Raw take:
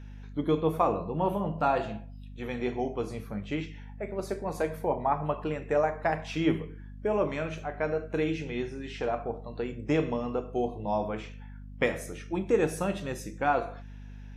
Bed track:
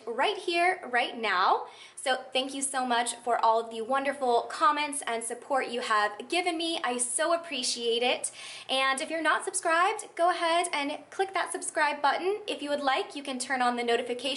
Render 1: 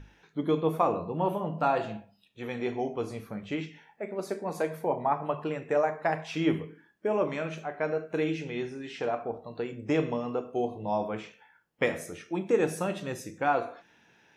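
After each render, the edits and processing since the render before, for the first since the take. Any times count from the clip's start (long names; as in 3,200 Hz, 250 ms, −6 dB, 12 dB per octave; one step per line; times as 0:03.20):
mains-hum notches 50/100/150/200/250 Hz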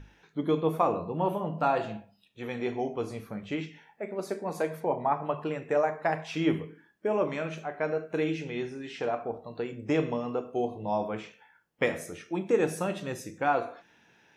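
0:04.80–0:05.36: low-pass filter 7,300 Hz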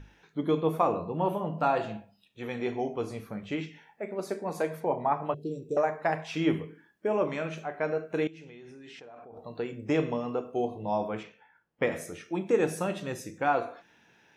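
0:05.34–0:05.77: elliptic band-stop filter 430–4,200 Hz, stop band 60 dB
0:08.27–0:09.37: output level in coarse steps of 24 dB
0:11.23–0:11.92: low-pass filter 2,100 Hz 6 dB per octave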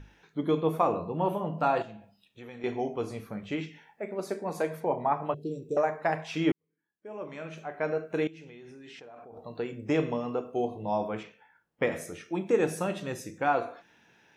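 0:01.82–0:02.64: downward compressor 2.5 to 1, threshold −45 dBFS
0:06.52–0:07.86: fade in quadratic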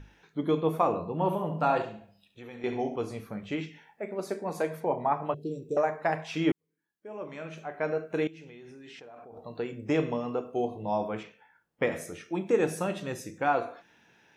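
0:01.13–0:02.96: flutter between parallel walls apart 11.9 metres, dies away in 0.41 s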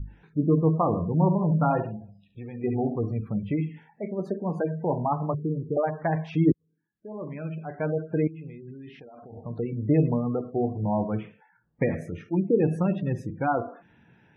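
gate on every frequency bin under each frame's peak −20 dB strong
bass and treble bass +15 dB, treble −15 dB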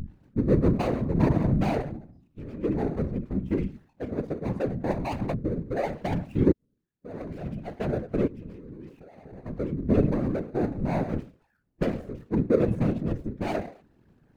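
running median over 41 samples
random phases in short frames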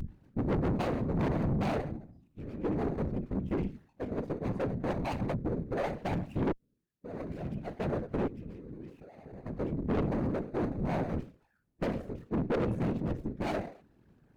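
tube saturation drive 26 dB, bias 0.55
pitch vibrato 0.34 Hz 19 cents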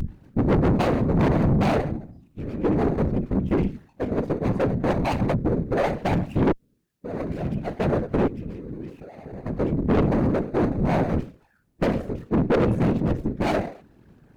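level +10 dB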